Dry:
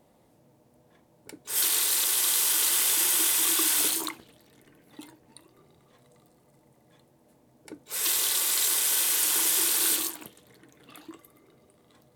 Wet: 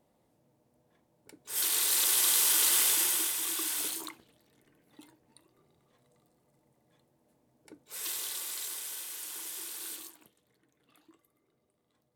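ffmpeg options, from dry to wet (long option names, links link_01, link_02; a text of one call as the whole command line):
ffmpeg -i in.wav -af "volume=-1dB,afade=type=in:start_time=1.35:duration=0.73:silence=0.398107,afade=type=out:start_time=2.8:duration=0.55:silence=0.398107,afade=type=out:start_time=7.81:duration=1.26:silence=0.421697" out.wav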